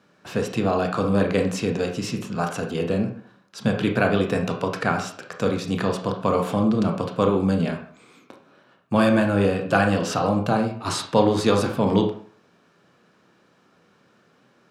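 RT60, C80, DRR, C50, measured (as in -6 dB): 0.50 s, 11.5 dB, 3.0 dB, 8.0 dB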